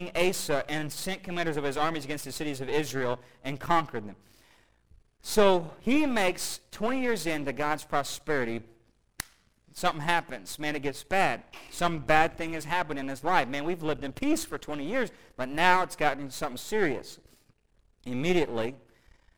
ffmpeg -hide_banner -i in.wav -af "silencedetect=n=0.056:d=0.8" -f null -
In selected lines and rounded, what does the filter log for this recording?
silence_start: 3.98
silence_end: 5.28 | silence_duration: 1.29
silence_start: 16.97
silence_end: 18.11 | silence_duration: 1.14